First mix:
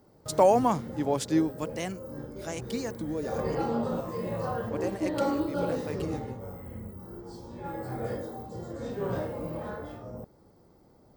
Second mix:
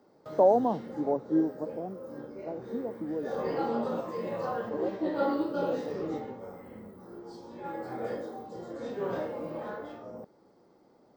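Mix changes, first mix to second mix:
speech: add inverse Chebyshev low-pass filter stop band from 2,100 Hz, stop band 50 dB
master: add three-way crossover with the lows and the highs turned down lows −19 dB, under 190 Hz, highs −12 dB, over 6,100 Hz

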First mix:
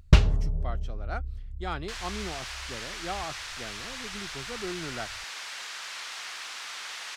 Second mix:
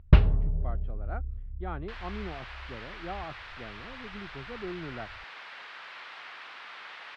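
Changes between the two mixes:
speech: add head-to-tape spacing loss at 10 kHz 26 dB
master: add high-frequency loss of the air 400 metres

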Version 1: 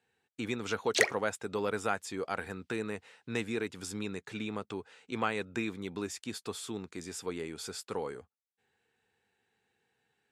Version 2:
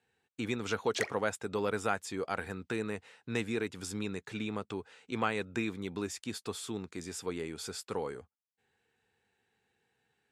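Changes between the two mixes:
background −9.0 dB
master: add low-shelf EQ 110 Hz +4.5 dB

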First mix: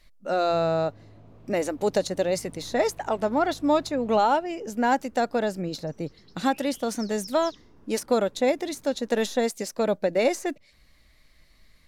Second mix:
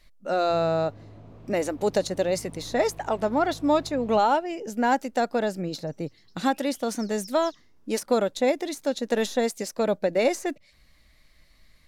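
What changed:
first sound +4.0 dB
second sound: add first-order pre-emphasis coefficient 0.8

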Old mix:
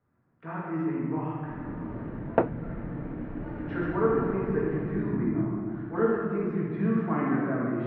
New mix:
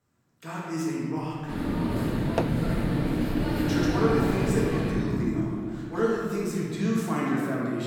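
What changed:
first sound +9.5 dB
second sound −4.0 dB
master: remove low-pass filter 1,900 Hz 24 dB per octave

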